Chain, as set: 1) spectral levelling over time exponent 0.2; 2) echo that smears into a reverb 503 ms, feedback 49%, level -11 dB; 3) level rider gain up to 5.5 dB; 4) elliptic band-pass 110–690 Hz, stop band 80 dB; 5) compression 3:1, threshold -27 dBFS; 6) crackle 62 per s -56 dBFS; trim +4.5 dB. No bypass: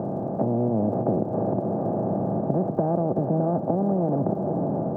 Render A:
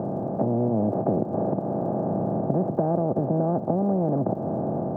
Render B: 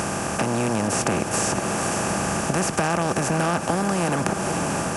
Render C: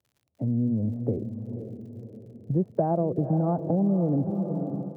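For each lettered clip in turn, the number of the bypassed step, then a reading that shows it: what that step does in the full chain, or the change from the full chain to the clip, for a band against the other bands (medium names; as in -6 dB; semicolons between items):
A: 2, momentary loudness spread change +1 LU; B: 4, 1 kHz band +7.0 dB; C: 1, 125 Hz band +5.0 dB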